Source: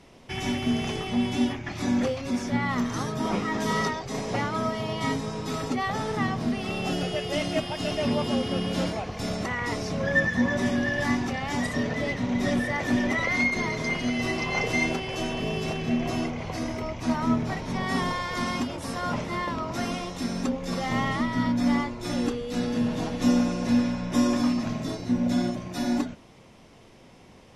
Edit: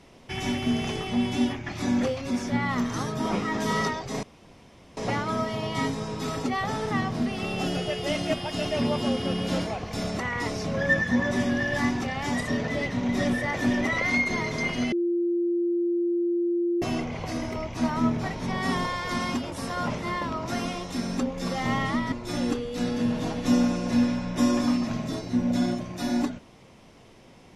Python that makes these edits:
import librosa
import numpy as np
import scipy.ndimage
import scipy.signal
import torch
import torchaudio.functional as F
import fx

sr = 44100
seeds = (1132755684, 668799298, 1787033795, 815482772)

y = fx.edit(x, sr, fx.insert_room_tone(at_s=4.23, length_s=0.74),
    fx.bleep(start_s=14.18, length_s=1.9, hz=346.0, db=-22.0),
    fx.cut(start_s=21.38, length_s=0.5), tone=tone)